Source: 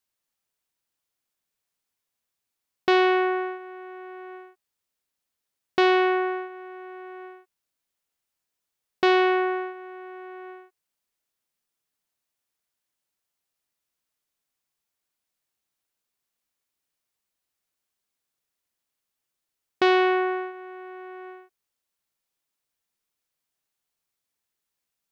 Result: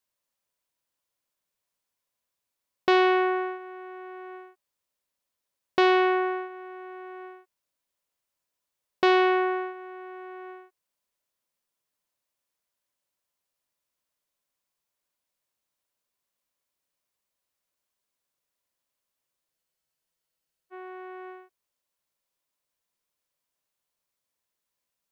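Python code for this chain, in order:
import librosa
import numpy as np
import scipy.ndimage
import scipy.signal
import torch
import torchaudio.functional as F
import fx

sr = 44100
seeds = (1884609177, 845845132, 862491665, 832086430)

y = fx.small_body(x, sr, hz=(570.0, 1000.0), ring_ms=30, db=7)
y = fx.spec_freeze(y, sr, seeds[0], at_s=19.52, hold_s=1.21)
y = F.gain(torch.from_numpy(y), -1.5).numpy()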